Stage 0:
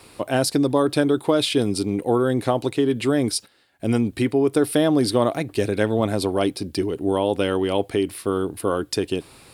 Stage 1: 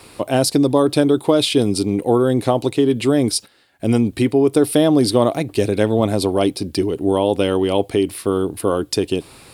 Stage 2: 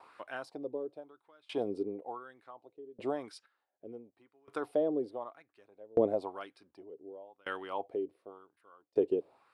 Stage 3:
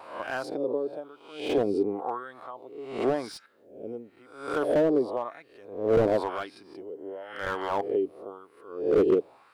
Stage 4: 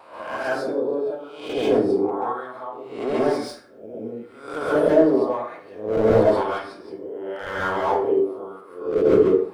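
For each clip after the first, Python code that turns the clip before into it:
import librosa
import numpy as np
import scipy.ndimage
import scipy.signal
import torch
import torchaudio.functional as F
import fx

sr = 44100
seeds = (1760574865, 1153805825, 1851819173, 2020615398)

y1 = fx.dynamic_eq(x, sr, hz=1600.0, q=1.7, threshold_db=-43.0, ratio=4.0, max_db=-6)
y1 = F.gain(torch.from_numpy(y1), 4.5).numpy()
y2 = fx.wah_lfo(y1, sr, hz=0.96, low_hz=430.0, high_hz=1600.0, q=3.3)
y2 = fx.tremolo_decay(y2, sr, direction='decaying', hz=0.67, depth_db=31)
y2 = F.gain(torch.from_numpy(y2), -2.0).numpy()
y3 = fx.spec_swells(y2, sr, rise_s=0.59)
y3 = fx.slew_limit(y3, sr, full_power_hz=24.0)
y3 = F.gain(torch.from_numpy(y3), 8.0).numpy()
y4 = fx.rev_plate(y3, sr, seeds[0], rt60_s=0.56, hf_ratio=0.6, predelay_ms=120, drr_db=-7.5)
y4 = F.gain(torch.from_numpy(y4), -2.0).numpy()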